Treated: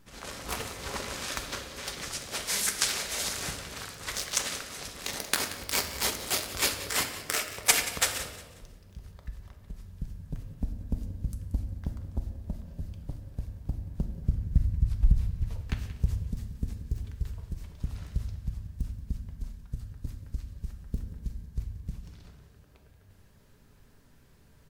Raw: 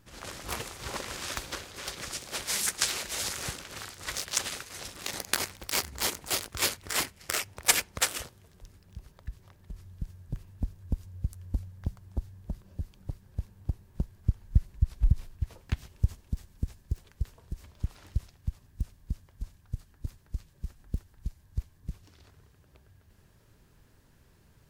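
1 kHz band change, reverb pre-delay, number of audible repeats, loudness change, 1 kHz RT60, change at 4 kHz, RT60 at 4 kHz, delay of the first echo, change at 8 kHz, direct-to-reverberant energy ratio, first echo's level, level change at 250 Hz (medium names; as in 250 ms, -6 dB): +1.0 dB, 4 ms, 3, +1.0 dB, 1.1 s, +1.0 dB, 1.0 s, 180 ms, +1.0 dB, 4.5 dB, -15.0 dB, +2.5 dB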